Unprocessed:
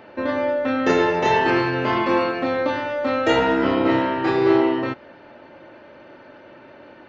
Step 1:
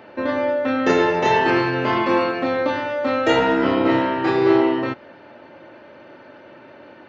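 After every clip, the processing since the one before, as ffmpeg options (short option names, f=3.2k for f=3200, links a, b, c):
-af "highpass=74,volume=1dB"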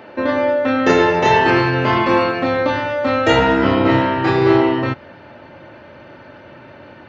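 -af "asubboost=boost=4:cutoff=150,volume=4.5dB"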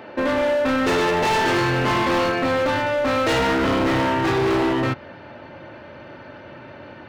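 -af "asoftclip=type=hard:threshold=-17.5dB"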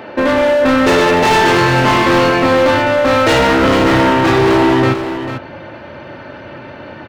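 -af "aecho=1:1:444:0.355,volume=8dB"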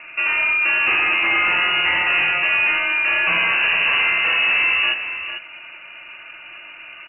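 -af "lowpass=f=2.6k:t=q:w=0.5098,lowpass=f=2.6k:t=q:w=0.6013,lowpass=f=2.6k:t=q:w=0.9,lowpass=f=2.6k:t=q:w=2.563,afreqshift=-3000,volume=-7dB"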